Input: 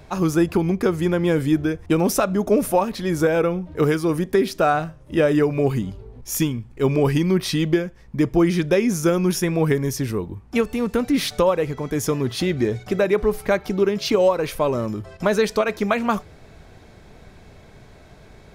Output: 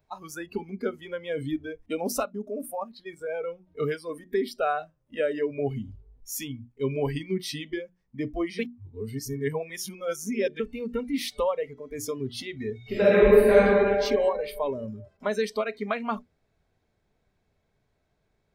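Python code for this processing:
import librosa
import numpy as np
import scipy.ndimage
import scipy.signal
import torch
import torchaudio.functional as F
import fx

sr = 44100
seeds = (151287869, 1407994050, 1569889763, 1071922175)

y = fx.level_steps(x, sr, step_db=11, at=(2.23, 3.48))
y = fx.reverb_throw(y, sr, start_s=12.78, length_s=0.8, rt60_s=2.6, drr_db=-10.0)
y = fx.edit(y, sr, fx.reverse_span(start_s=8.59, length_s=2.01), tone=tone)
y = fx.hum_notches(y, sr, base_hz=60, count=6)
y = fx.noise_reduce_blind(y, sr, reduce_db=19)
y = y * 10.0 ** (-7.5 / 20.0)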